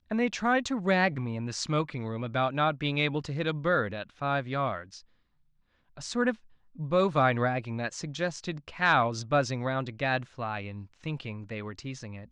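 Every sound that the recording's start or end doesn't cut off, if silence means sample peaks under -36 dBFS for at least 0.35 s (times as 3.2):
5.97–6.34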